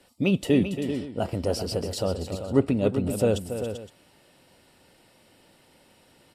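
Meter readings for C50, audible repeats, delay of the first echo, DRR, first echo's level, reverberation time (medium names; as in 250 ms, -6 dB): no reverb, 3, 280 ms, no reverb, -10.0 dB, no reverb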